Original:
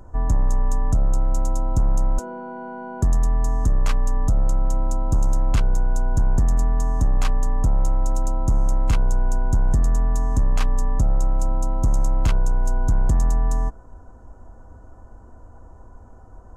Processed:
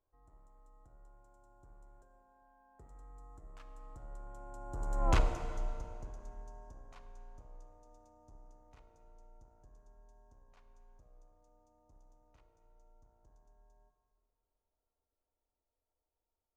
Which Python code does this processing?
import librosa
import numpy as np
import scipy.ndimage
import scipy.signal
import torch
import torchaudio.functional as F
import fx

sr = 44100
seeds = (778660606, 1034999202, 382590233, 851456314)

y = fx.doppler_pass(x, sr, speed_mps=26, closest_m=1.9, pass_at_s=5.12)
y = fx.lowpass(y, sr, hz=3300.0, slope=6)
y = fx.low_shelf_res(y, sr, hz=280.0, db=-7.5, q=1.5)
y = fx.hum_notches(y, sr, base_hz=50, count=8)
y = fx.rev_plate(y, sr, seeds[0], rt60_s=2.5, hf_ratio=0.8, predelay_ms=0, drr_db=8.0)